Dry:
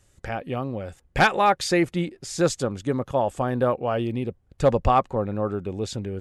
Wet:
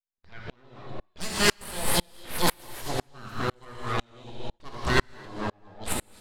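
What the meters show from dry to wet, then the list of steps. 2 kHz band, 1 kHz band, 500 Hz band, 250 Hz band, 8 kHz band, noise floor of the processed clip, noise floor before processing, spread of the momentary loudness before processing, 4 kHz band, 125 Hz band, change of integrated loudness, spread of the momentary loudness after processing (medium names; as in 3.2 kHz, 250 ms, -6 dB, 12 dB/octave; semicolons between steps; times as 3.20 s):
-2.5 dB, -9.0 dB, -10.5 dB, -8.5 dB, +4.0 dB, -67 dBFS, -63 dBFS, 11 LU, +3.5 dB, -7.5 dB, -4.5 dB, 20 LU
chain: spectral noise reduction 19 dB; resonant high shelf 2.9 kHz +10 dB, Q 3; on a send: feedback echo behind a high-pass 264 ms, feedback 33%, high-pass 3.9 kHz, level -8 dB; on the sum: full-wave rectifier; level-controlled noise filter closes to 2.2 kHz, open at -18 dBFS; gated-style reverb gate 300 ms flat, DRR 0 dB; sawtooth tremolo in dB swelling 2 Hz, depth 37 dB; trim +2 dB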